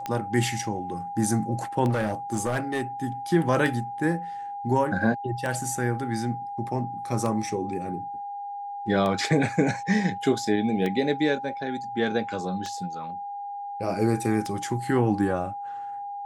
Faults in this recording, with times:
tick 33 1/3 rpm -16 dBFS
tone 810 Hz -32 dBFS
1.89–3.06 clipped -21 dBFS

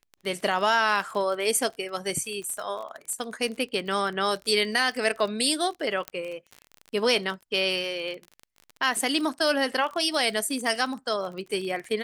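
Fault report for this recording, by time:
crackle 31/s -32 dBFS
1.7 gap 3.3 ms
6.08 pop -14 dBFS

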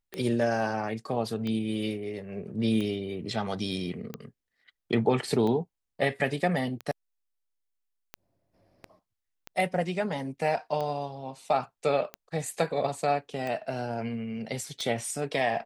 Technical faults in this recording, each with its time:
tick 45 rpm -21 dBFS

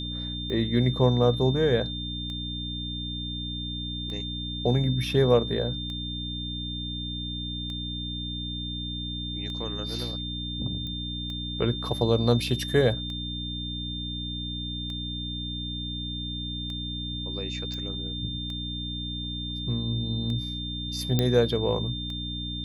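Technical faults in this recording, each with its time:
hum 60 Hz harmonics 5 -35 dBFS
tick 33 1/3 rpm -25 dBFS
tone 3600 Hz -34 dBFS
10.87 pop -25 dBFS
17.74 pop -25 dBFS
21.19 pop -10 dBFS

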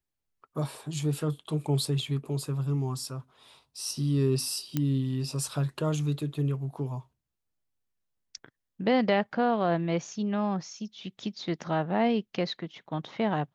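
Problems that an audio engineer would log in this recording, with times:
4.77 pop -14 dBFS

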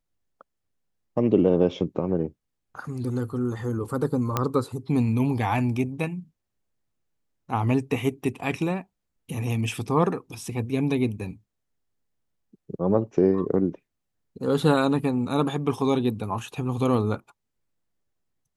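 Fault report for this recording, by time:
4.37 pop -9 dBFS

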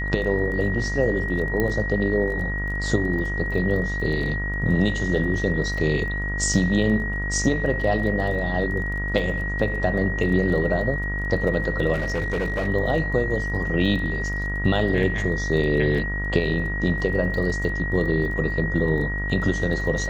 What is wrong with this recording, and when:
buzz 50 Hz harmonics 39 -28 dBFS
crackle 17/s -32 dBFS
tone 1900 Hz -28 dBFS
1.6 pop -11 dBFS
11.93–12.68 clipped -20.5 dBFS

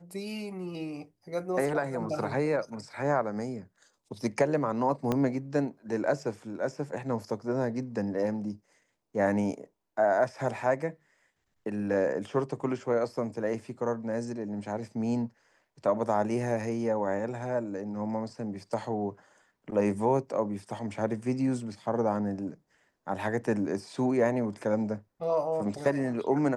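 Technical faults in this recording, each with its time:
5.12 pop -15 dBFS

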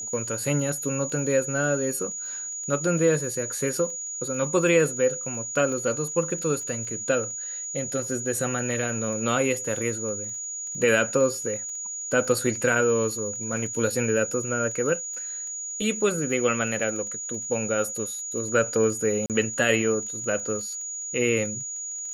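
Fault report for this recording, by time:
crackle 15/s -34 dBFS
tone 6800 Hz -31 dBFS
19.26–19.3 gap 38 ms

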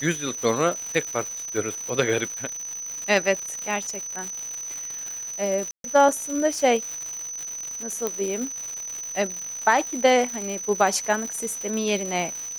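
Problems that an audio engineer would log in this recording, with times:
crackle 270/s -29 dBFS
tone 6000 Hz -31 dBFS
5.71–5.84 gap 0.132 s
8.07 pop -11 dBFS

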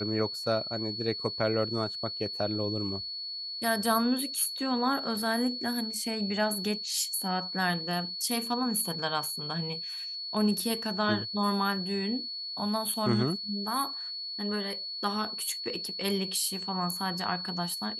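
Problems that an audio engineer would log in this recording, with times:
tone 4400 Hz -35 dBFS

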